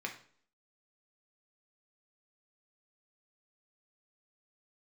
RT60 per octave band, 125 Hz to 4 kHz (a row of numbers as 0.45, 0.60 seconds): 0.50, 0.60, 0.55, 0.50, 0.45, 0.45 seconds